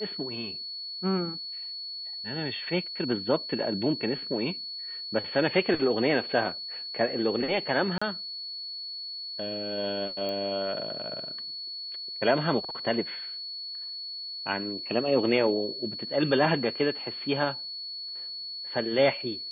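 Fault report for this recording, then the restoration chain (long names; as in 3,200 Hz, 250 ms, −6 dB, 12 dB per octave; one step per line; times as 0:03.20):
whistle 4,400 Hz −35 dBFS
0:07.98–0:08.02: drop-out 35 ms
0:10.29: click −22 dBFS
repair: click removal
notch filter 4,400 Hz, Q 30
repair the gap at 0:07.98, 35 ms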